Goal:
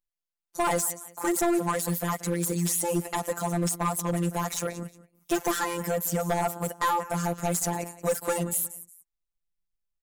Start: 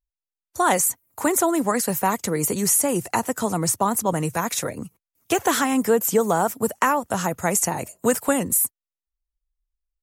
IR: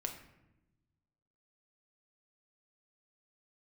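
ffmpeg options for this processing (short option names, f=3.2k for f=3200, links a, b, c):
-af "afftfilt=real='hypot(re,im)*cos(PI*b)':imag='0':win_size=1024:overlap=0.75,aecho=1:1:180|360:0.112|0.0303,asoftclip=type=hard:threshold=-19.5dB"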